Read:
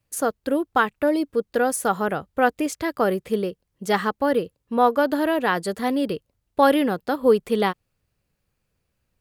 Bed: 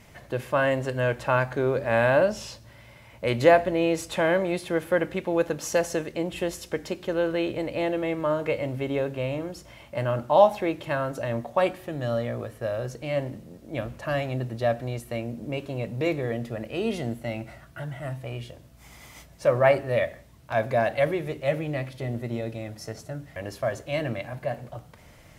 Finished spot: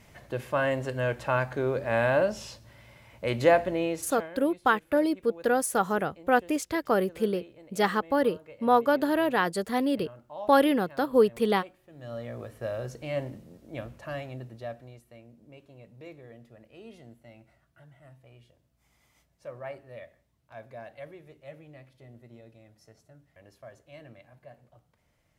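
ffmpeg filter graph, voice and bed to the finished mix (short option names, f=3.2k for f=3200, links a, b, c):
-filter_complex "[0:a]adelay=3900,volume=-3.5dB[a];[1:a]volume=14.5dB,afade=t=out:st=3.73:d=0.57:silence=0.11885,afade=t=in:st=11.87:d=0.74:silence=0.125893,afade=t=out:st=13.21:d=1.85:silence=0.158489[b];[a][b]amix=inputs=2:normalize=0"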